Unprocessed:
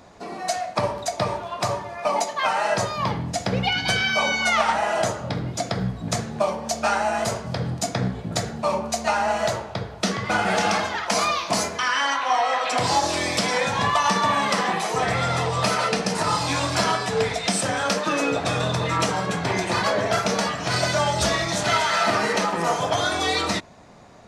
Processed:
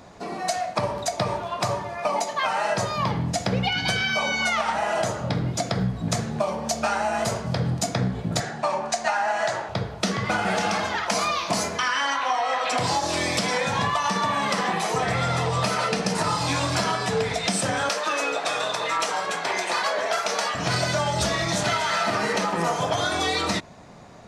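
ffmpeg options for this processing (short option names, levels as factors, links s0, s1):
-filter_complex "[0:a]asettb=1/sr,asplit=3[s0][s1][s2];[s0]atrim=end=8.404[s3];[s1]atrim=start=8.4:end=9.69,asetpts=PTS-STARTPTS,afade=t=in:d=0.004:c=qsin,afade=t=out:st=1.286:d=0.004:c=qsin,highpass=190,equalizer=f=210:t=q:w=4:g=-9,equalizer=f=460:t=q:w=4:g=-6,equalizer=f=770:t=q:w=4:g=5,equalizer=f=1700:t=q:w=4:g=9,lowpass=f=9500:w=0.5412,lowpass=f=9500:w=1.3066[s4];[s2]atrim=start=9.686[s5];[s3][s4]acrossfade=d=0.004:c1=hsin:c2=qsin[s6];[s6][s5]acrossfade=d=0.004:c1=qsin:c2=hsin,asettb=1/sr,asplit=3[s7][s8][s9];[s7]atrim=end=17.894[s10];[s8]atrim=start=17.89:end=20.55,asetpts=PTS-STARTPTS,afade=t=in:d=0.004:c=qsin,afade=t=out:st=2.656:d=0.004:c=qsin,highpass=560[s11];[s9]atrim=start=20.546[s12];[s10][s11]acrossfade=d=0.004:c1=hsin:c2=qsin[s13];[s13][s12]acrossfade=d=0.004:c1=qsin:c2=hsin,acompressor=threshold=0.0794:ratio=6,equalizer=f=150:w=1.9:g=3,volume=1.19"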